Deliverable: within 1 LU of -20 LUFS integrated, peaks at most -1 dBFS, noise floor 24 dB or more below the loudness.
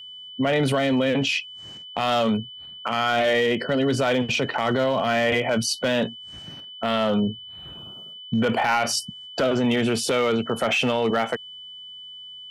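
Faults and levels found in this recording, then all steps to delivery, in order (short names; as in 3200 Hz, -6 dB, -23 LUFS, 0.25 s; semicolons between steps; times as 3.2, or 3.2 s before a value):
clipped 1.0%; flat tops at -15.0 dBFS; steady tone 3000 Hz; tone level -38 dBFS; loudness -23.0 LUFS; peak -15.0 dBFS; loudness target -20.0 LUFS
-> clip repair -15 dBFS; notch 3000 Hz, Q 30; gain +3 dB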